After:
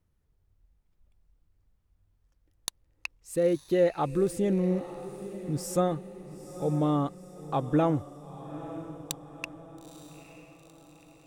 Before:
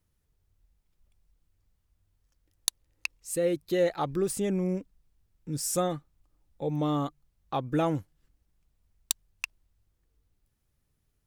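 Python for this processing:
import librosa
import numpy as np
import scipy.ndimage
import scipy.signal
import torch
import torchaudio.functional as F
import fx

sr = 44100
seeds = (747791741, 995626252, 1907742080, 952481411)

y = fx.high_shelf(x, sr, hz=2400.0, db=-10.5)
y = fx.echo_diffused(y, sr, ms=914, feedback_pct=49, wet_db=-13.5)
y = y * 10.0 ** (2.5 / 20.0)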